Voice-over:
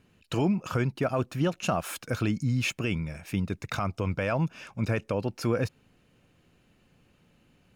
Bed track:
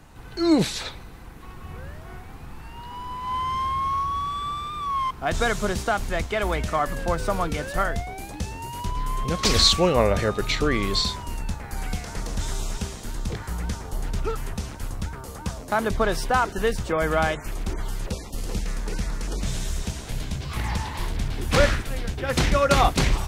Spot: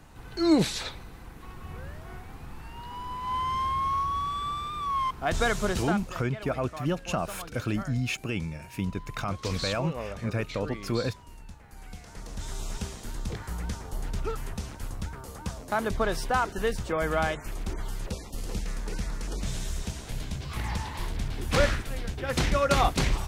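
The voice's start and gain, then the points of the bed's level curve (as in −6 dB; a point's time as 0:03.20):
5.45 s, −2.0 dB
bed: 0:05.81 −2.5 dB
0:06.16 −16.5 dB
0:11.75 −16.5 dB
0:12.76 −4.5 dB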